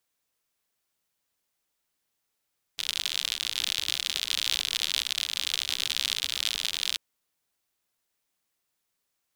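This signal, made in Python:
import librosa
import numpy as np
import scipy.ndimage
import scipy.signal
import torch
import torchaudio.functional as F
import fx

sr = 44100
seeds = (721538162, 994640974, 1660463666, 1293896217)

y = fx.rain(sr, seeds[0], length_s=4.19, drops_per_s=72.0, hz=3500.0, bed_db=-25.5)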